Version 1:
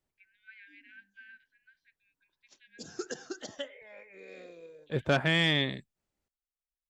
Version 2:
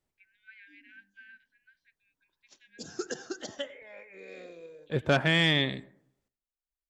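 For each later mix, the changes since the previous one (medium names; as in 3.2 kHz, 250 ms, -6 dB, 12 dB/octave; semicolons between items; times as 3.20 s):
reverb: on, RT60 0.70 s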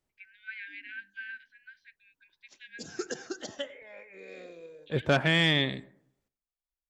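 first voice +11.5 dB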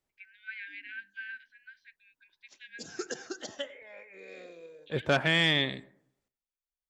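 master: add bass shelf 320 Hz -5 dB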